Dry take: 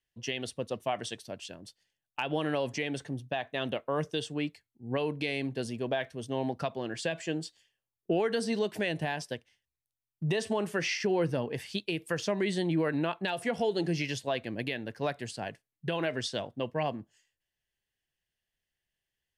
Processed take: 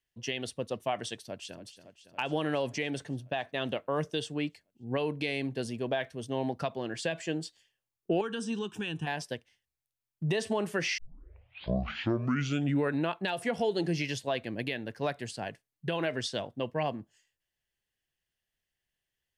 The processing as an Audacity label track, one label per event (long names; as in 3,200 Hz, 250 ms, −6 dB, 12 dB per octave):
1.190000	1.610000	delay throw 280 ms, feedback 75%, level −12.5 dB
8.210000	9.070000	phaser with its sweep stopped centre 3,000 Hz, stages 8
10.980000	10.980000	tape start 2.01 s